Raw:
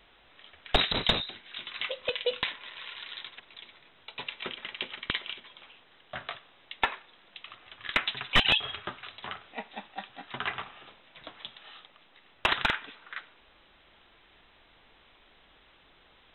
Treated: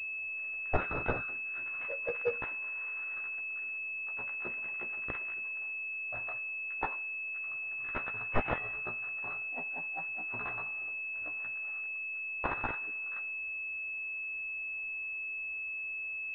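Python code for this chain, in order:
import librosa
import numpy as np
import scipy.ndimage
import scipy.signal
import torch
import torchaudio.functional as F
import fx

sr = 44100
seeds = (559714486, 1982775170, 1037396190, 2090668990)

y = fx.frame_reverse(x, sr, frame_ms=33.0)
y = fx.peak_eq(y, sr, hz=200.0, db=-11.5, octaves=0.21)
y = fx.pwm(y, sr, carrier_hz=2600.0)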